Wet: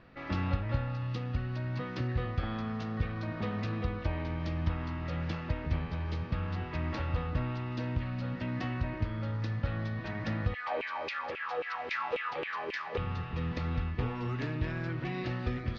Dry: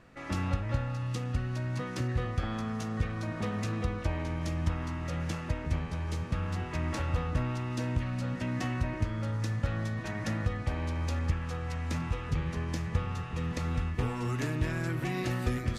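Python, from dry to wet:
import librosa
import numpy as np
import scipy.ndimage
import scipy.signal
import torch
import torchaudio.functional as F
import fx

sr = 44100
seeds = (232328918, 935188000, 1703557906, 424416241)

y = scipy.signal.sosfilt(scipy.signal.butter(6, 4800.0, 'lowpass', fs=sr, output='sos'), x)
y = fx.filter_lfo_highpass(y, sr, shape='saw_down', hz=3.7, low_hz=380.0, high_hz=2700.0, q=5.5, at=(10.53, 12.97), fade=0.02)
y = fx.rider(y, sr, range_db=10, speed_s=2.0)
y = y * librosa.db_to_amplitude(-1.5)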